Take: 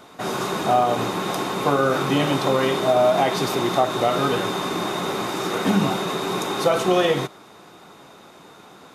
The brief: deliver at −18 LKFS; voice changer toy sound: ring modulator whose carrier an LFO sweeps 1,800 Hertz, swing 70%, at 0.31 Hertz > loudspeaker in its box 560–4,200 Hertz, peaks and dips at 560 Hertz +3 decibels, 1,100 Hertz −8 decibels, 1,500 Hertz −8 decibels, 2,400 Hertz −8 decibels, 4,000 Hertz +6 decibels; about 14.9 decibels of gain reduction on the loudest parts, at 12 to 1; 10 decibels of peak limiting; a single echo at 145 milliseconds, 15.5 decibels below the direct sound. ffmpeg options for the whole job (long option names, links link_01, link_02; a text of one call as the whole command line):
ffmpeg -i in.wav -af "acompressor=threshold=-29dB:ratio=12,alimiter=level_in=3dB:limit=-24dB:level=0:latency=1,volume=-3dB,aecho=1:1:145:0.168,aeval=exprs='val(0)*sin(2*PI*1800*n/s+1800*0.7/0.31*sin(2*PI*0.31*n/s))':channel_layout=same,highpass=560,equalizer=frequency=560:width_type=q:width=4:gain=3,equalizer=frequency=1100:width_type=q:width=4:gain=-8,equalizer=frequency=1500:width_type=q:width=4:gain=-8,equalizer=frequency=2400:width_type=q:width=4:gain=-8,equalizer=frequency=4000:width_type=q:width=4:gain=6,lowpass=frequency=4200:width=0.5412,lowpass=frequency=4200:width=1.3066,volume=22dB" out.wav